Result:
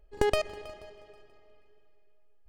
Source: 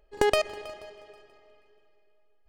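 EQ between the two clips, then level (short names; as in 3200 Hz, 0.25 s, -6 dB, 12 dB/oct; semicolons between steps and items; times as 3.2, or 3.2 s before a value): low shelf 210 Hz +11 dB; -5.0 dB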